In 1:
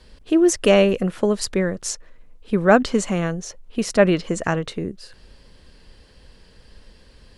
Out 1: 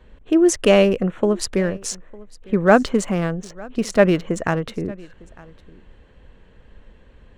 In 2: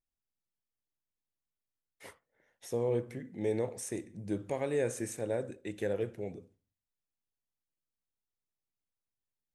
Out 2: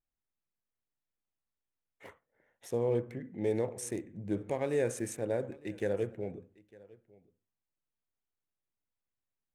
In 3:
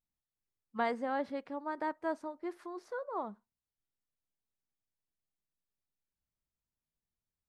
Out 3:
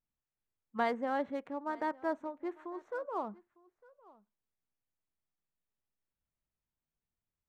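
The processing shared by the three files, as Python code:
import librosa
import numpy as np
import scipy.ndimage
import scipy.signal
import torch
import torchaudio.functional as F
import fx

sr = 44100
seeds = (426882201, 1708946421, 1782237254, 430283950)

y = fx.wiener(x, sr, points=9)
y = y + 10.0 ** (-23.0 / 20.0) * np.pad(y, (int(904 * sr / 1000.0), 0))[:len(y)]
y = y * librosa.db_to_amplitude(1.0)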